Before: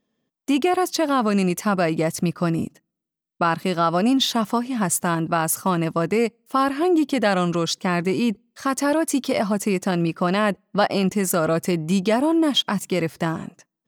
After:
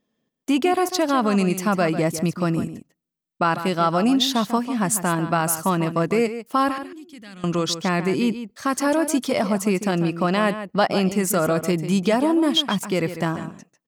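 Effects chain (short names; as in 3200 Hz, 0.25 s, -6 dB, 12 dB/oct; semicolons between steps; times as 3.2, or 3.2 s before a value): 6.78–7.44 passive tone stack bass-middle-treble 6-0-2; outdoor echo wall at 25 m, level -11 dB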